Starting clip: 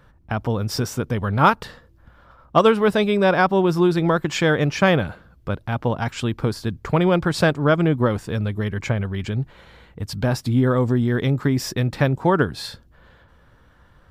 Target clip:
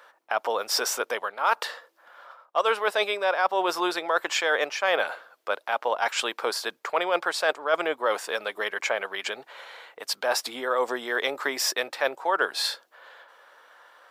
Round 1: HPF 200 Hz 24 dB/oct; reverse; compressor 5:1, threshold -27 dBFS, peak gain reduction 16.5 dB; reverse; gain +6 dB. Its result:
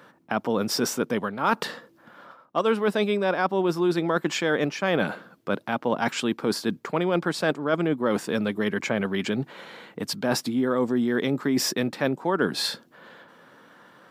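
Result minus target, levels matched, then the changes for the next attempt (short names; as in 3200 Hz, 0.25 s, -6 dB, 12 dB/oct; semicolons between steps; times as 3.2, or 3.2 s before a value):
250 Hz band +14.0 dB
change: HPF 550 Hz 24 dB/oct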